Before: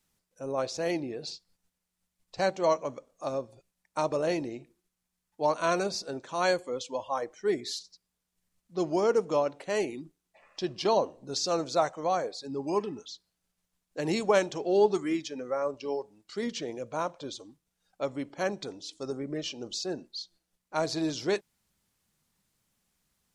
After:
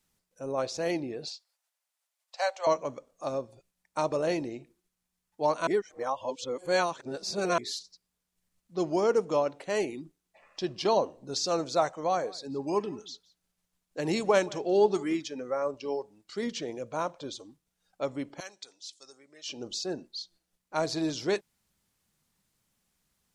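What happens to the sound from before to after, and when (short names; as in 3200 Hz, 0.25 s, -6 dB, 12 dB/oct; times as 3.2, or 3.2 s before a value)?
1.28–2.67 steep high-pass 560 Hz 48 dB/oct
5.67–7.58 reverse
11.98–15.23 echo 0.173 s -22 dB
18.4–19.49 band-pass 6900 Hz, Q 0.7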